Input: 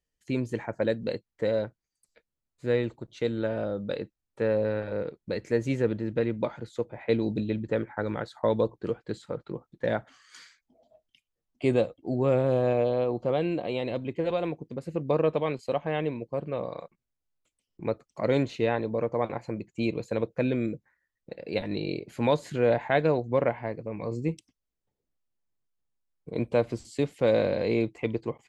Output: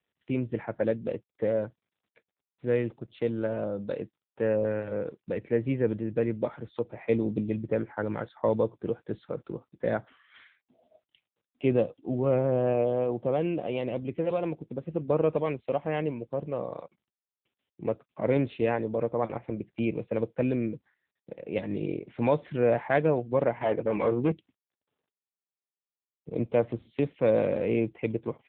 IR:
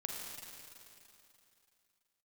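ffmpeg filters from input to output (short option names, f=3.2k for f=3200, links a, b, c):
-filter_complex "[0:a]asettb=1/sr,asplit=3[a][b][c];[a]atrim=end=23.614[d];[b]atrim=start=23.61:end=24.32,asetpts=PTS-STARTPTS,afade=t=in:d=0.004:c=qsin,afade=t=out:st=0.706:d=0.004:c=qsin,asplit=2[e][f];[f]highpass=f=720:p=1,volume=24dB,asoftclip=type=tanh:threshold=-15dB[g];[e][g]amix=inputs=2:normalize=0,lowpass=f=2.2k:p=1,volume=-6dB[h];[c]atrim=start=24.316[i];[d][h]acrossfade=d=0.004:c1=hsin:c2=qsin[j];[j][i]acrossfade=d=0.004:c1=qsin:c2=hsin" -ar 8000 -c:a libopencore_amrnb -b:a 7950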